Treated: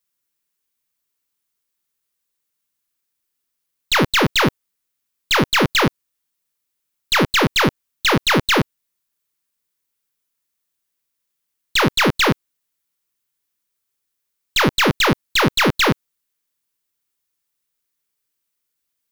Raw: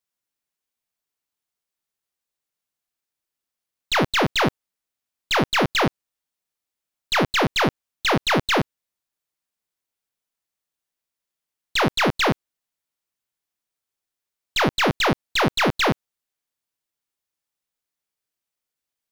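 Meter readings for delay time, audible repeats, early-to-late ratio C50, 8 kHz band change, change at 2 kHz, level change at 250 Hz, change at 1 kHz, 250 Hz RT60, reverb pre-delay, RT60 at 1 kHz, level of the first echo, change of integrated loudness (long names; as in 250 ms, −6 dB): no echo audible, no echo audible, no reverb audible, +6.5 dB, +4.5 dB, +4.5 dB, +2.5 dB, no reverb audible, no reverb audible, no reverb audible, no echo audible, +4.0 dB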